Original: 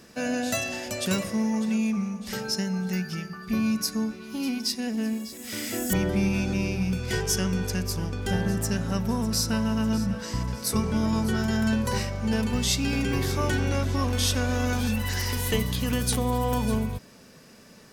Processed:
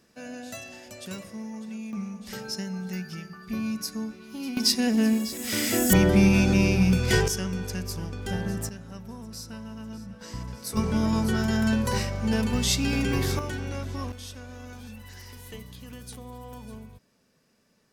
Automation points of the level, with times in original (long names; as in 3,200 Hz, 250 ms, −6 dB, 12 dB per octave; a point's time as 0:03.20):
−11.5 dB
from 0:01.93 −5 dB
from 0:04.57 +6 dB
from 0:07.28 −4 dB
from 0:08.69 −14 dB
from 0:10.21 −7 dB
from 0:10.77 +0.5 dB
from 0:13.39 −7.5 dB
from 0:14.12 −16.5 dB